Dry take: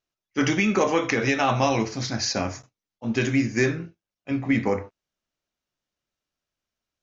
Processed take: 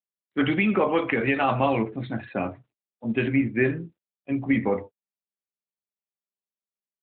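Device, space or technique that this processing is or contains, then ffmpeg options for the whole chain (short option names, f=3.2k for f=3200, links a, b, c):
mobile call with aggressive noise cancelling: -af "highpass=110,afftdn=nr=17:nf=-37" -ar 8000 -c:a libopencore_amrnb -b:a 12200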